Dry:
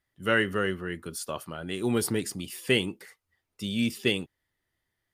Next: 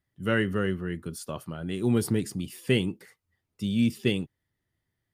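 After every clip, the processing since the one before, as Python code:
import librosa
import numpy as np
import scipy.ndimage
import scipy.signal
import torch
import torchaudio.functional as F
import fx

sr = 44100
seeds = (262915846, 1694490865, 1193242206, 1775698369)

y = fx.peak_eq(x, sr, hz=130.0, db=11.0, octaves=2.7)
y = F.gain(torch.from_numpy(y), -4.5).numpy()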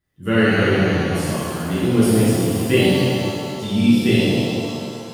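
y = fx.rev_shimmer(x, sr, seeds[0], rt60_s=2.4, semitones=7, shimmer_db=-8, drr_db=-10.5)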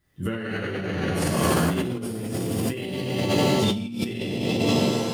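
y = fx.over_compress(x, sr, threshold_db=-26.0, ratio=-1.0)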